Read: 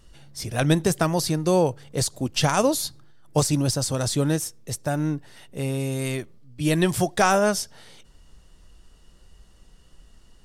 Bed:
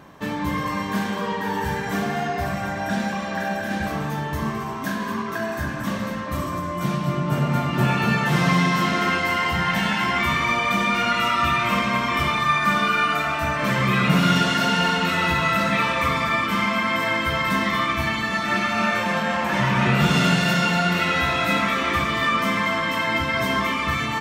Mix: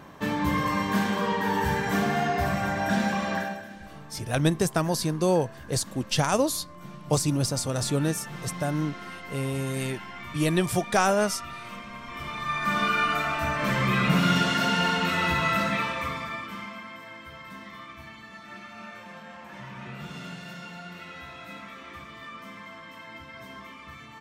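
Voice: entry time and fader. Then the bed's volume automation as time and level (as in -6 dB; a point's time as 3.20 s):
3.75 s, -3.0 dB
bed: 3.34 s -0.5 dB
3.76 s -19 dB
11.98 s -19 dB
12.83 s -4 dB
15.58 s -4 dB
17.03 s -21 dB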